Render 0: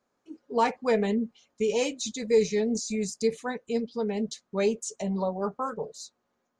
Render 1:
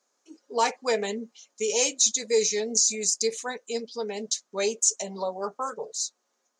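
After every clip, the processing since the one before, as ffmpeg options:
-af "highpass=360,equalizer=f=6.4k:w=0.93:g=15"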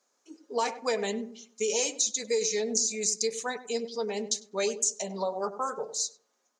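-filter_complex "[0:a]acompressor=threshold=-24dB:ratio=6,asplit=2[a][b];[b]adelay=99,lowpass=f=1k:p=1,volume=-11dB,asplit=2[c][d];[d]adelay=99,lowpass=f=1k:p=1,volume=0.35,asplit=2[e][f];[f]adelay=99,lowpass=f=1k:p=1,volume=0.35,asplit=2[g][h];[h]adelay=99,lowpass=f=1k:p=1,volume=0.35[i];[a][c][e][g][i]amix=inputs=5:normalize=0"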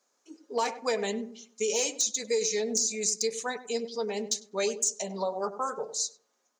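-af "asoftclip=type=hard:threshold=-18dB"

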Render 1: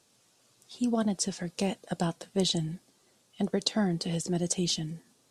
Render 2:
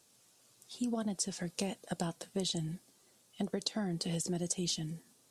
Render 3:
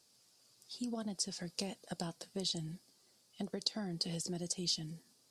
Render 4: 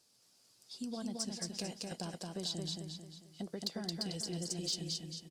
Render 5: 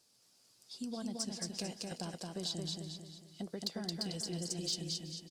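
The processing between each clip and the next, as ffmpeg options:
-af "highshelf=f=9.4k:g=11,acompressor=threshold=-28dB:ratio=6,volume=-3dB"
-af "equalizer=f=4.8k:w=3.5:g=10.5,volume=-5dB"
-af "aecho=1:1:222|444|666|888|1110:0.708|0.297|0.125|0.0525|0.022,asoftclip=type=tanh:threshold=-23.5dB,volume=-1.5dB"
-af "aecho=1:1:376:0.119"

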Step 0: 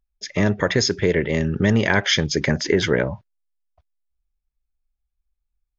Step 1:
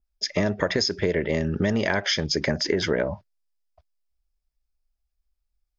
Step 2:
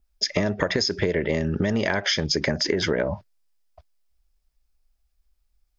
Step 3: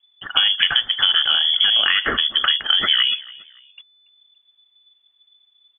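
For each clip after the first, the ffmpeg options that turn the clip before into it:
-af "equalizer=f=125:t=o:w=0.33:g=-9,equalizer=f=630:t=o:w=0.33:g=6,equalizer=f=5k:t=o:w=0.33:g=8,acompressor=threshold=-19dB:ratio=6,adynamicequalizer=threshold=0.0158:dfrequency=2000:dqfactor=0.7:tfrequency=2000:tqfactor=0.7:attack=5:release=100:ratio=0.375:range=1.5:mode=cutabove:tftype=highshelf"
-af "acompressor=threshold=-30dB:ratio=3,volume=8dB"
-filter_complex "[0:a]asplit=2[a][b];[b]asoftclip=type=tanh:threshold=-22dB,volume=-6dB[c];[a][c]amix=inputs=2:normalize=0,aecho=1:1:284|568:0.0841|0.0261,lowpass=f=3k:t=q:w=0.5098,lowpass=f=3k:t=q:w=0.6013,lowpass=f=3k:t=q:w=0.9,lowpass=f=3k:t=q:w=2.563,afreqshift=-3500,volume=4dB"

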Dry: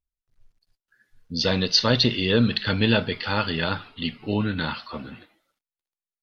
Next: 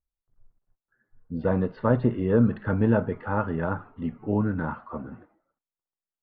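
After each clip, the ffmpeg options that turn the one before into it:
-af "lowpass=f=1.3k:w=0.5412,lowpass=f=1.3k:w=1.3066"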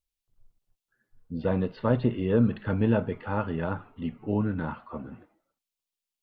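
-af "highshelf=f=2.1k:t=q:w=1.5:g=7.5,volume=-2dB"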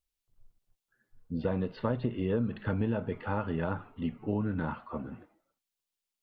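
-af "acompressor=threshold=-26dB:ratio=6"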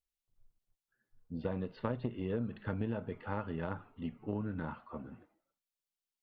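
-af "aeval=exprs='0.168*(cos(1*acos(clip(val(0)/0.168,-1,1)))-cos(1*PI/2))+0.0211*(cos(3*acos(clip(val(0)/0.168,-1,1)))-cos(3*PI/2))':c=same,volume=-3dB"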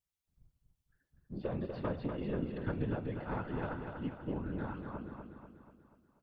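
-filter_complex "[0:a]afftfilt=real='hypot(re,im)*cos(2*PI*random(0))':imag='hypot(re,im)*sin(2*PI*random(1))':win_size=512:overlap=0.75,asplit=2[a][b];[b]aecho=0:1:243|486|729|972|1215|1458:0.501|0.261|0.136|0.0705|0.0366|0.0191[c];[a][c]amix=inputs=2:normalize=0,volume=5dB"

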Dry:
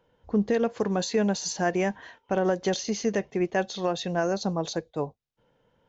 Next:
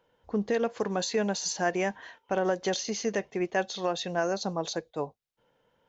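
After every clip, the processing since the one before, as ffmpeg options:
-af "lowshelf=f=300:g=-8.5"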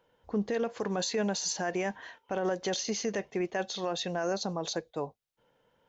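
-af "alimiter=limit=-22dB:level=0:latency=1:release=25"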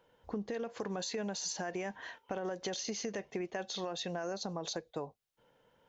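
-af "acompressor=threshold=-36dB:ratio=6,volume=1dB"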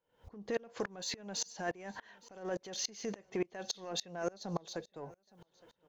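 -filter_complex "[0:a]asplit=2[a][b];[b]asoftclip=type=tanh:threshold=-36dB,volume=-4.5dB[c];[a][c]amix=inputs=2:normalize=0,aecho=1:1:864|1728:0.0668|0.0241,aeval=exprs='val(0)*pow(10,-29*if(lt(mod(-3.5*n/s,1),2*abs(-3.5)/1000),1-mod(-3.5*n/s,1)/(2*abs(-3.5)/1000),(mod(-3.5*n/s,1)-2*abs(-3.5)/1000)/(1-2*abs(-3.5)/1000))/20)':c=same,volume=4.5dB"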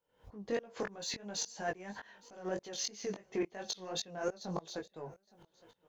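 -af "flanger=delay=18.5:depth=3.3:speed=3,volume=3dB"

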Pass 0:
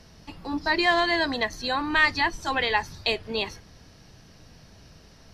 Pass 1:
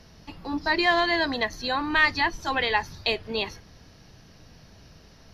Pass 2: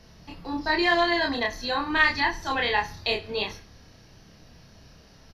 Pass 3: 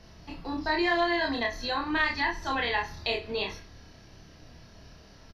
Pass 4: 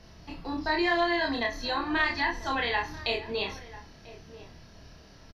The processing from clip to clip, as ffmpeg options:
-af "equalizer=f=8.3k:t=o:w=0.27:g=-13.5"
-filter_complex "[0:a]asplit=2[a][b];[b]adelay=29,volume=-2dB[c];[a][c]amix=inputs=2:normalize=0,aecho=1:1:66|132|198:0.141|0.0509|0.0183,volume=-2.5dB"
-filter_complex "[0:a]highshelf=f=7.4k:g=-7,asplit=2[a][b];[b]adelay=26,volume=-7dB[c];[a][c]amix=inputs=2:normalize=0,acompressor=threshold=-31dB:ratio=1.5"
-filter_complex "[0:a]asplit=2[a][b];[b]adelay=991.3,volume=-16dB,highshelf=f=4k:g=-22.3[c];[a][c]amix=inputs=2:normalize=0"

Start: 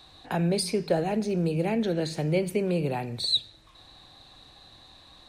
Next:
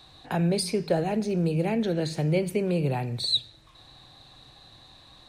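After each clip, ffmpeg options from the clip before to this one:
-af "equalizer=f=130:t=o:w=0.4:g=7"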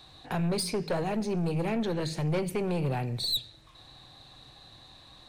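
-af "aeval=exprs='(tanh(15.8*val(0)+0.25)-tanh(0.25))/15.8':c=same"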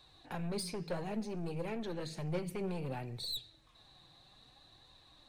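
-af "flanger=delay=1.8:depth=4.4:regen=53:speed=0.61:shape=triangular,volume=-5dB"

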